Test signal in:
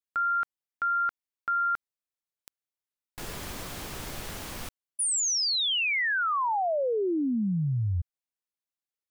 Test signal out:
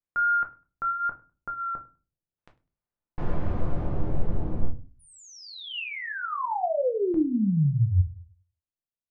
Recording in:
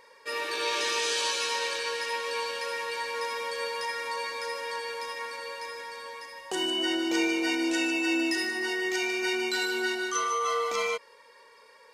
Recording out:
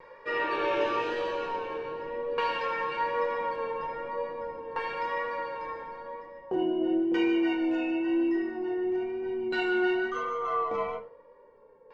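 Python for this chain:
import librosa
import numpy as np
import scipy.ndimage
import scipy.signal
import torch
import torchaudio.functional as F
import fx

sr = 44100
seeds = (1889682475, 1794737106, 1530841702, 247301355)

p1 = scipy.signal.sosfilt(scipy.signal.butter(6, 9200.0, 'lowpass', fs=sr, output='sos'), x)
p2 = fx.vibrato(p1, sr, rate_hz=1.0, depth_cents=31.0)
p3 = fx.dynamic_eq(p2, sr, hz=2800.0, q=6.8, threshold_db=-48.0, ratio=4.0, max_db=7)
p4 = fx.filter_lfo_lowpass(p3, sr, shape='saw_down', hz=0.42, low_hz=460.0, high_hz=1900.0, q=0.72)
p5 = fx.low_shelf(p4, sr, hz=220.0, db=8.5)
p6 = p5 + fx.echo_feedback(p5, sr, ms=101, feedback_pct=18, wet_db=-23.5, dry=0)
p7 = fx.room_shoebox(p6, sr, seeds[0], volume_m3=120.0, walls='furnished', distance_m=0.84)
y = fx.rider(p7, sr, range_db=5, speed_s=2.0)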